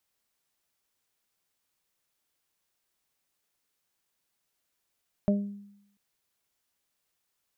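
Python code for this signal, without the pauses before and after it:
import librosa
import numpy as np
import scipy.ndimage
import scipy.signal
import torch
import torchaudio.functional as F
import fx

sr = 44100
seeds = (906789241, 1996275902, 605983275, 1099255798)

y = fx.additive(sr, length_s=0.69, hz=202.0, level_db=-19.5, upper_db=(-11.0, -4.0), decay_s=0.79, upper_decays_s=(0.42, 0.26))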